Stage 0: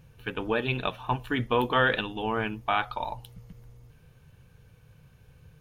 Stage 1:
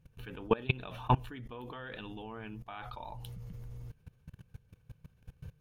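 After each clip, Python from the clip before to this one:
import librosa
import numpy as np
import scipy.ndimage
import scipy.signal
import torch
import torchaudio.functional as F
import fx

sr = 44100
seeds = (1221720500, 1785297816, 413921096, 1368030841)

y = fx.rider(x, sr, range_db=4, speed_s=0.5)
y = fx.low_shelf(y, sr, hz=270.0, db=6.0)
y = fx.level_steps(y, sr, step_db=22)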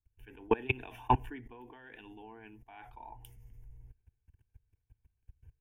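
y = fx.fixed_phaser(x, sr, hz=830.0, stages=8)
y = fx.band_widen(y, sr, depth_pct=70)
y = y * 10.0 ** (-2.5 / 20.0)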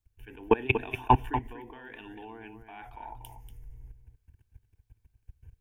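y = x + 10.0 ** (-9.5 / 20.0) * np.pad(x, (int(238 * sr / 1000.0), 0))[:len(x)]
y = y * 10.0 ** (5.5 / 20.0)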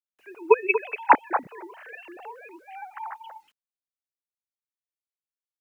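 y = fx.sine_speech(x, sr)
y = fx.quant_dither(y, sr, seeds[0], bits=12, dither='none')
y = y * 10.0 ** (4.5 / 20.0)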